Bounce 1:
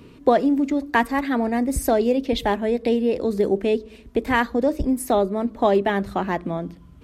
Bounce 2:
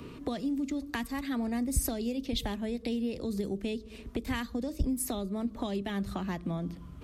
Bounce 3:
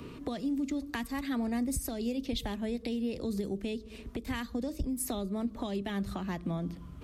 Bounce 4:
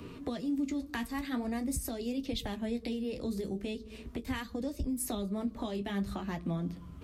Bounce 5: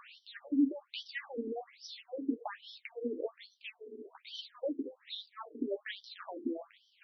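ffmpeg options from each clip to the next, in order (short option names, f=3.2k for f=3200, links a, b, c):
-filter_complex "[0:a]asplit=2[a][b];[b]acompressor=threshold=-28dB:ratio=6,volume=2dB[c];[a][c]amix=inputs=2:normalize=0,equalizer=f=1.2k:t=o:w=0.22:g=5,acrossover=split=210|3000[d][e][f];[e]acompressor=threshold=-31dB:ratio=10[g];[d][g][f]amix=inputs=3:normalize=0,volume=-6dB"
-af "alimiter=limit=-23.5dB:level=0:latency=1:release=262"
-af "flanger=delay=9.8:depth=7.6:regen=-41:speed=0.44:shape=triangular,volume=3dB"
-af "afftfilt=real='re*between(b*sr/1024,310*pow(4300/310,0.5+0.5*sin(2*PI*1.2*pts/sr))/1.41,310*pow(4300/310,0.5+0.5*sin(2*PI*1.2*pts/sr))*1.41)':imag='im*between(b*sr/1024,310*pow(4300/310,0.5+0.5*sin(2*PI*1.2*pts/sr))/1.41,310*pow(4300/310,0.5+0.5*sin(2*PI*1.2*pts/sr))*1.41)':win_size=1024:overlap=0.75,volume=6dB"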